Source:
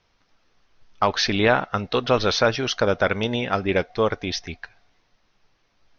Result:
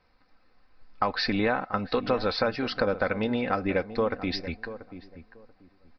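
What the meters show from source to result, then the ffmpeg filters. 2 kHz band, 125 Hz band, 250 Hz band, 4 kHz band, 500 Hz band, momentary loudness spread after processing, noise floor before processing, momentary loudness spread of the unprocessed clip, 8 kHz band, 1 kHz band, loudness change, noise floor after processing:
−6.0 dB, −7.0 dB, −2.5 dB, −8.0 dB, −5.5 dB, 12 LU, −67 dBFS, 9 LU, can't be measured, −5.5 dB, −6.0 dB, −64 dBFS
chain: -filter_complex "[0:a]equalizer=frequency=3200:width=3.6:gain=-14,aecho=1:1:3.9:0.45,acompressor=threshold=-24dB:ratio=3,asplit=2[link_01][link_02];[link_02]adelay=685,lowpass=frequency=920:poles=1,volume=-12dB,asplit=2[link_03][link_04];[link_04]adelay=685,lowpass=frequency=920:poles=1,volume=0.22,asplit=2[link_05][link_06];[link_06]adelay=685,lowpass=frequency=920:poles=1,volume=0.22[link_07];[link_03][link_05][link_07]amix=inputs=3:normalize=0[link_08];[link_01][link_08]amix=inputs=2:normalize=0,aresample=11025,aresample=44100"

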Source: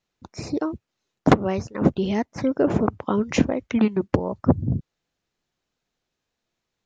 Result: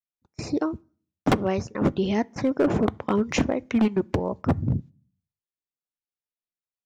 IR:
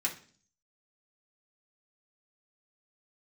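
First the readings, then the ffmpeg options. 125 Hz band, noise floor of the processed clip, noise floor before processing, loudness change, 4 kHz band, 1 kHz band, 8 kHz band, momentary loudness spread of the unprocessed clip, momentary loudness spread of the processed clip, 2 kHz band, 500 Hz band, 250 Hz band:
−2.5 dB, below −85 dBFS, −82 dBFS, −2.0 dB, 0.0 dB, −2.5 dB, can't be measured, 9 LU, 8 LU, −1.0 dB, −1.5 dB, −2.0 dB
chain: -filter_complex "[0:a]agate=range=-26dB:threshold=-37dB:ratio=16:detection=peak,volume=15dB,asoftclip=hard,volume=-15dB,asplit=2[link_01][link_02];[1:a]atrim=start_sample=2205,asetrate=41013,aresample=44100[link_03];[link_02][link_03]afir=irnorm=-1:irlink=0,volume=-23dB[link_04];[link_01][link_04]amix=inputs=2:normalize=0"

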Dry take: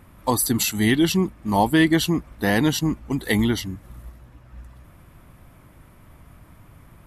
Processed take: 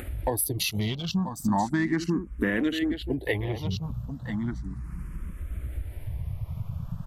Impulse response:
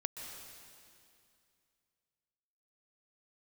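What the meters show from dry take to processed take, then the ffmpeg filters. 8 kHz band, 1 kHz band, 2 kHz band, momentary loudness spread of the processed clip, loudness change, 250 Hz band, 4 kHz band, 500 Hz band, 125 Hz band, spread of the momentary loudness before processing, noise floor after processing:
−7.5 dB, −7.0 dB, −6.5 dB, 11 LU, −9.0 dB, −6.5 dB, −7.0 dB, −6.5 dB, −3.0 dB, 8 LU, −42 dBFS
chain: -filter_complex "[0:a]afwtdn=0.0251,acompressor=mode=upward:threshold=-21dB:ratio=2.5,aecho=1:1:985:0.237,acompressor=threshold=-25dB:ratio=6,asplit=2[link_01][link_02];[link_02]afreqshift=0.35[link_03];[link_01][link_03]amix=inputs=2:normalize=1,volume=4.5dB"

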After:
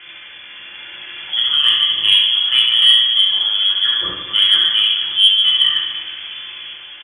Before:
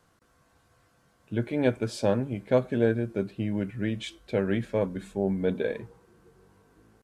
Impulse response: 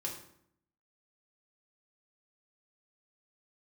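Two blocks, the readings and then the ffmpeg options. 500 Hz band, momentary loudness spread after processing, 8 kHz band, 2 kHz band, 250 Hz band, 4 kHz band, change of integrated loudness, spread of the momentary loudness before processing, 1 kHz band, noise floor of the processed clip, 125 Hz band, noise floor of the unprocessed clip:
below −15 dB, 19 LU, can't be measured, +14.5 dB, below −15 dB, +38.0 dB, +17.0 dB, 6 LU, +6.0 dB, −37 dBFS, below −15 dB, −66 dBFS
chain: -filter_complex "[0:a]aeval=exprs='val(0)+0.5*0.0141*sgn(val(0))':channel_layout=same,equalizer=frequency=1900:width=7:gain=4,lowpass=frequency=3000:width_type=q:width=0.5098,lowpass=frequency=3000:width_type=q:width=0.6013,lowpass=frequency=3000:width_type=q:width=0.9,lowpass=frequency=3000:width_type=q:width=2.563,afreqshift=-3500,highpass=46,equalizer=frequency=600:width=0.62:gain=-6.5,bandreject=frequency=1100:width=11[link_01];[1:a]atrim=start_sample=2205,afade=type=out:start_time=0.15:duration=0.01,atrim=end_sample=7056[link_02];[link_01][link_02]afir=irnorm=-1:irlink=0,dynaudnorm=framelen=230:gausssize=7:maxgain=4.5dB,aecho=1:1:70|150.5|243.1|349.5|472:0.631|0.398|0.251|0.158|0.1,asoftclip=type=tanh:threshold=-6dB,volume=6.5dB"

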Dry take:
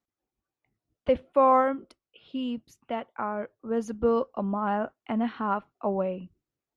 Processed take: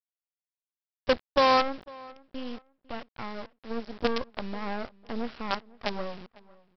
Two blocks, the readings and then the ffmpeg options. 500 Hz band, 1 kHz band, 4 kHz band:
−4.0 dB, −2.5 dB, +13.0 dB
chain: -filter_complex "[0:a]aresample=11025,acrusher=bits=4:dc=4:mix=0:aa=0.000001,aresample=44100,asplit=2[link_01][link_02];[link_02]adelay=501,lowpass=frequency=2600:poles=1,volume=-22.5dB,asplit=2[link_03][link_04];[link_04]adelay=501,lowpass=frequency=2600:poles=1,volume=0.28[link_05];[link_01][link_03][link_05]amix=inputs=3:normalize=0,volume=-2.5dB"

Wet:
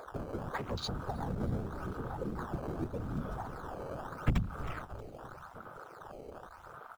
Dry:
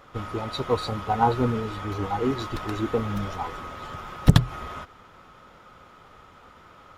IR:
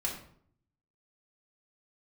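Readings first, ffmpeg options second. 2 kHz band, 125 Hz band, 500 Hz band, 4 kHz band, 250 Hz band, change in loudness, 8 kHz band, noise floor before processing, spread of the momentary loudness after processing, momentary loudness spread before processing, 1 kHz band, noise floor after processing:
−9.5 dB, −11.5 dB, −12.0 dB, −12.0 dB, −11.0 dB, −13.0 dB, −11.5 dB, −52 dBFS, 14 LU, 16 LU, −14.0 dB, −52 dBFS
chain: -filter_complex "[0:a]asoftclip=type=tanh:threshold=-9.5dB,lowshelf=frequency=210:gain=-5,bandreject=frequency=50:width_type=h:width=6,bandreject=frequency=100:width_type=h:width=6,bandreject=frequency=150:width_type=h:width=6,acrossover=split=150|3000[link_01][link_02][link_03];[link_02]acompressor=threshold=-38dB:ratio=8[link_04];[link_01][link_04][link_03]amix=inputs=3:normalize=0,afftfilt=real='hypot(re,im)*cos(2*PI*random(0))':imag='hypot(re,im)*sin(2*PI*random(1))':win_size=512:overlap=0.75,acompressor=mode=upward:threshold=-43dB:ratio=2.5,acrusher=samples=14:mix=1:aa=0.000001:lfo=1:lforange=22.4:lforate=0.84,asplit=6[link_05][link_06][link_07][link_08][link_09][link_10];[link_06]adelay=316,afreqshift=-57,volume=-12dB[link_11];[link_07]adelay=632,afreqshift=-114,volume=-18.4dB[link_12];[link_08]adelay=948,afreqshift=-171,volume=-24.8dB[link_13];[link_09]adelay=1264,afreqshift=-228,volume=-31.1dB[link_14];[link_10]adelay=1580,afreqshift=-285,volume=-37.5dB[link_15];[link_05][link_11][link_12][link_13][link_14][link_15]amix=inputs=6:normalize=0,afwtdn=0.00501,equalizer=frequency=1100:width=2.4:gain=-2.5,volume=6dB"

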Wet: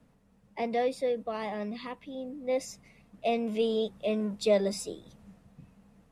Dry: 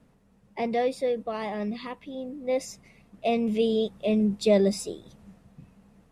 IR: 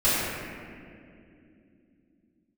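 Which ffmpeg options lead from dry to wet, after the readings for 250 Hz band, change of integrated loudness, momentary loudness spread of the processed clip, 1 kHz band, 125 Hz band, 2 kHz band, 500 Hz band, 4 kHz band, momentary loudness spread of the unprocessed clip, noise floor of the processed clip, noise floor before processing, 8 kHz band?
−7.0 dB, −4.0 dB, 14 LU, −2.5 dB, can't be measured, −2.5 dB, −3.0 dB, −2.5 dB, 15 LU, −64 dBFS, −62 dBFS, −2.5 dB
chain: -filter_complex "[0:a]bandreject=frequency=380:width=12,acrossover=split=250[link_01][link_02];[link_01]asoftclip=type=tanh:threshold=-37.5dB[link_03];[link_03][link_02]amix=inputs=2:normalize=0,volume=-2.5dB"

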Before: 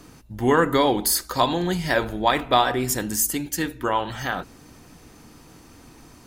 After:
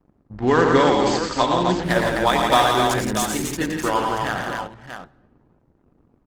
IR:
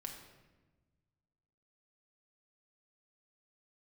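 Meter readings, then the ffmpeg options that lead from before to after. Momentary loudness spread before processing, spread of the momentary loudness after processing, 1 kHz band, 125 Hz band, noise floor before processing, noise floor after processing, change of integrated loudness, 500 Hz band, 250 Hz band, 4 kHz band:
9 LU, 13 LU, +3.5 dB, +3.0 dB, −49 dBFS, −63 dBFS, +2.5 dB, +4.0 dB, +3.0 dB, +2.0 dB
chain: -filter_complex "[0:a]aeval=exprs='sgn(val(0))*max(abs(val(0))-0.00531,0)':channel_layout=same,adynamicsmooth=sensitivity=5:basefreq=560,aecho=1:1:90|113|170|258|634:0.335|0.531|0.473|0.596|0.355,asplit=2[link_01][link_02];[1:a]atrim=start_sample=2205[link_03];[link_02][link_03]afir=irnorm=-1:irlink=0,volume=-12.5dB[link_04];[link_01][link_04]amix=inputs=2:normalize=0" -ar 48000 -c:a libopus -b:a 20k

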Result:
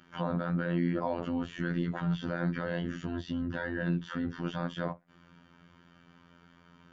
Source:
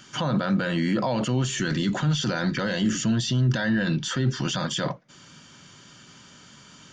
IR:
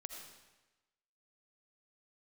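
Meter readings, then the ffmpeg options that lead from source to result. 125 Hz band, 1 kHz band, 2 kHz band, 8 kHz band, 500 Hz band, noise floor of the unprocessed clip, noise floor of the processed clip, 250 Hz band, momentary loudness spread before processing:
−9.5 dB, −7.0 dB, −8.5 dB, below −25 dB, −6.0 dB, −50 dBFS, −61 dBFS, −7.5 dB, 4 LU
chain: -af "lowpass=1800,afftfilt=real='hypot(re,im)*cos(PI*b)':imag='0':win_size=2048:overlap=0.75,volume=-3dB"

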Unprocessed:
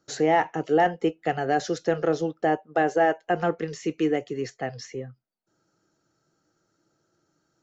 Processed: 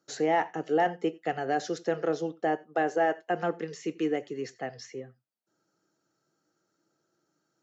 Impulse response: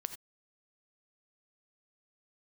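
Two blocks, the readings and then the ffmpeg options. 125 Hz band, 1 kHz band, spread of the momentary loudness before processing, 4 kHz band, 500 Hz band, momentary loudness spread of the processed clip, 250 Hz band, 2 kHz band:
−8.0 dB, −4.5 dB, 11 LU, −4.5 dB, −4.5 dB, 12 LU, −5.0 dB, −4.5 dB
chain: -filter_complex "[0:a]highpass=160,asplit=2[link_01][link_02];[1:a]atrim=start_sample=2205[link_03];[link_02][link_03]afir=irnorm=-1:irlink=0,volume=-8dB[link_04];[link_01][link_04]amix=inputs=2:normalize=0,volume=-7dB"

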